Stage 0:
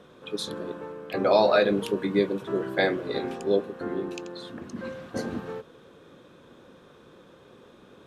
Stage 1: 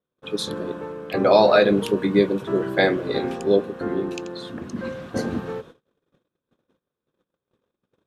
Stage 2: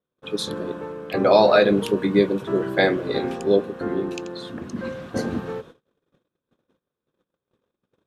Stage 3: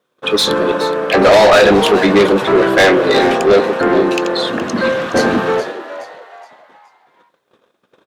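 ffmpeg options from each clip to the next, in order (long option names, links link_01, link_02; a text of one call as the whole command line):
ffmpeg -i in.wav -af "agate=range=-39dB:threshold=-47dB:ratio=16:detection=peak,lowshelf=frequency=200:gain=4,volume=4.5dB" out.wav
ffmpeg -i in.wav -af anull out.wav
ffmpeg -i in.wav -filter_complex "[0:a]asplit=2[link_01][link_02];[link_02]highpass=frequency=720:poles=1,volume=28dB,asoftclip=type=tanh:threshold=-1dB[link_03];[link_01][link_03]amix=inputs=2:normalize=0,lowpass=frequency=4100:poles=1,volume=-6dB,asplit=5[link_04][link_05][link_06][link_07][link_08];[link_05]adelay=420,afreqshift=130,volume=-13dB[link_09];[link_06]adelay=840,afreqshift=260,volume=-21.9dB[link_10];[link_07]adelay=1260,afreqshift=390,volume=-30.7dB[link_11];[link_08]adelay=1680,afreqshift=520,volume=-39.6dB[link_12];[link_04][link_09][link_10][link_11][link_12]amix=inputs=5:normalize=0" out.wav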